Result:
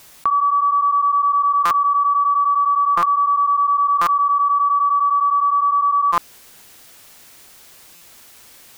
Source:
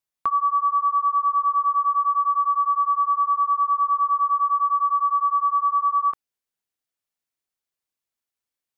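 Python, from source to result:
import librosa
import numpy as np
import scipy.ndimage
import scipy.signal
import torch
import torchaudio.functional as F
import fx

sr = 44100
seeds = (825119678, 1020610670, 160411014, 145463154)

y = fx.buffer_glitch(x, sr, at_s=(1.65, 2.97, 4.01, 6.12, 7.95), block=256, repeats=9)
y = fx.env_flatten(y, sr, amount_pct=100)
y = y * librosa.db_to_amplitude(2.5)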